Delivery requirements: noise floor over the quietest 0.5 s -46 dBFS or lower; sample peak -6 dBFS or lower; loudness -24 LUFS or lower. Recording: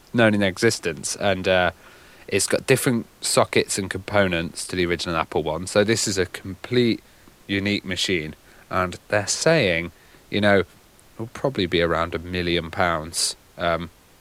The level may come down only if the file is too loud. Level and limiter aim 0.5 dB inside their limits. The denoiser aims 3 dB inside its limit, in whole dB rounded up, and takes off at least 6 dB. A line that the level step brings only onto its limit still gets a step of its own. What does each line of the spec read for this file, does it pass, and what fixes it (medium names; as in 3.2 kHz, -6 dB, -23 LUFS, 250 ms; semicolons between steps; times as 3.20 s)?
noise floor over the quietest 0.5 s -52 dBFS: pass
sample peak -4.0 dBFS: fail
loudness -22.0 LUFS: fail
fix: trim -2.5 dB